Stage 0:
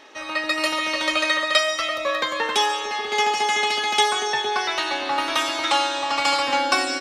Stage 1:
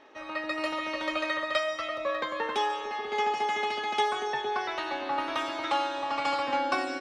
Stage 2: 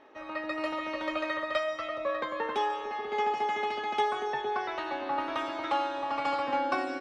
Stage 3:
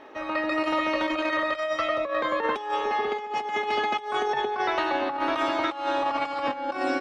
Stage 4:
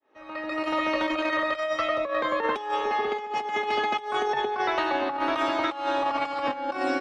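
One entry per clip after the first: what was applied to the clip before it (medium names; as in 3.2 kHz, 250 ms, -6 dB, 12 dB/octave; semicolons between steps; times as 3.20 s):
low-pass 1.3 kHz 6 dB/octave; trim -4.5 dB
treble shelf 2.7 kHz -9.5 dB
compressor with a negative ratio -33 dBFS, ratio -0.5; trim +7 dB
fade-in on the opening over 0.86 s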